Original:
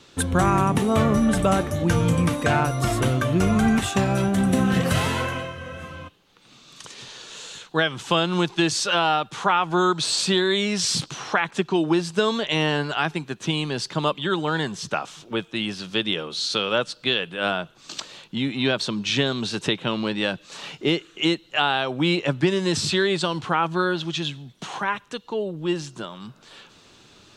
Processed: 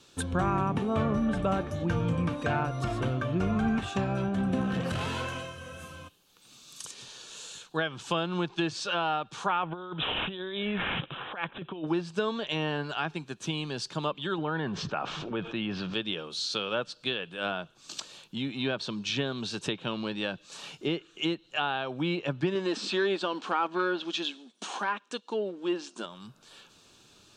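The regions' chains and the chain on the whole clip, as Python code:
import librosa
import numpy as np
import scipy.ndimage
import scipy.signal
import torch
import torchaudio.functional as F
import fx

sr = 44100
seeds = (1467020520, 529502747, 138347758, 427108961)

y = fx.chain(x, sr, fx.high_shelf(hz=5800.0, db=10.0),
    fx.overload_stage(gain_db=14.5),
    fx.transformer_sat(knee_hz=170.0), at=(4.61, 6.91))
y = fx.chain(y, sr, fx.peak_eq(hz=530.0, db=6.5, octaves=0.24),
    fx.over_compress(threshold_db=-24.0, ratio=-0.5),
    fx.resample_bad(factor=6, down='none', up='filtered'), at=(9.63, 11.87))
y = fx.chain(y, sr, fx.lowpass(hz=2400.0, slope=12),
    fx.env_flatten(amount_pct=70), at=(14.38, 15.94))
y = fx.chain(y, sr, fx.leveller(passes=1),
    fx.brickwall_bandpass(low_hz=190.0, high_hz=10000.0), at=(22.55, 26.06))
y = fx.env_lowpass_down(y, sr, base_hz=2700.0, full_db=-18.0)
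y = fx.high_shelf(y, sr, hz=7500.0, db=11.5)
y = fx.notch(y, sr, hz=2000.0, q=7.9)
y = F.gain(torch.from_numpy(y), -8.0).numpy()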